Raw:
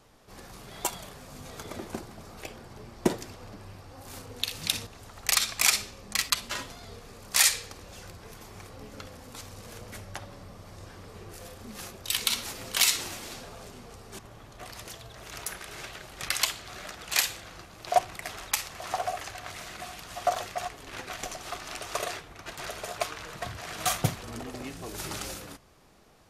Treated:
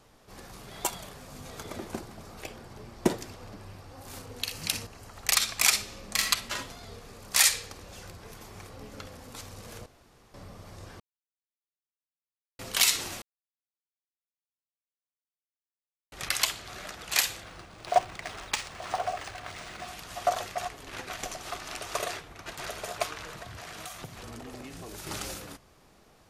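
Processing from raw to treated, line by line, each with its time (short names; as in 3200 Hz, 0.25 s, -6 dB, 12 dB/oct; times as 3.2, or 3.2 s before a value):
4.4–5.15 notch 3600 Hz, Q 6.9
5.83–6.25 reverb throw, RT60 0.84 s, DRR 2 dB
9.86–10.34 room tone
11–12.59 mute
13.22–16.12 mute
17.43–19.88 decimation joined by straight lines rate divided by 3×
23.3–25.07 compressor 8:1, threshold -38 dBFS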